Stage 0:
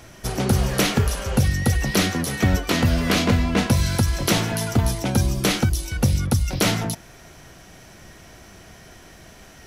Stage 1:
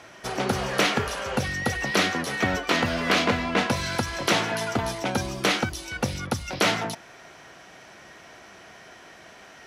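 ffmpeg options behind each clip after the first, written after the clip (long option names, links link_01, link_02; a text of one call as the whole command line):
ffmpeg -i in.wav -af "highpass=frequency=850:poles=1,aemphasis=mode=reproduction:type=75fm,volume=4.5dB" out.wav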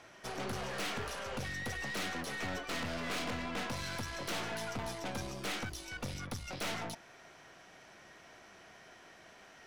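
ffmpeg -i in.wav -af "aeval=exprs='(tanh(25.1*val(0)+0.5)-tanh(0.5))/25.1':channel_layout=same,volume=-7dB" out.wav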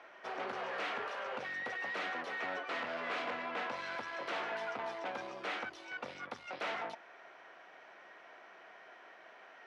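ffmpeg -i in.wav -af "highpass=480,lowpass=2300,volume=3dB" out.wav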